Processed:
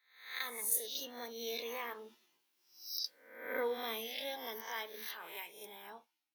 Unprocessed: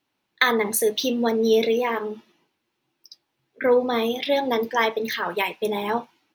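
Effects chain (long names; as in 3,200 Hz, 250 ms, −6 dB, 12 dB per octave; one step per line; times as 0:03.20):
peak hold with a rise ahead of every peak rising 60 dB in 0.59 s
source passing by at 0:02.92, 9 m/s, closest 1.5 metres
RIAA equalisation recording
level −2.5 dB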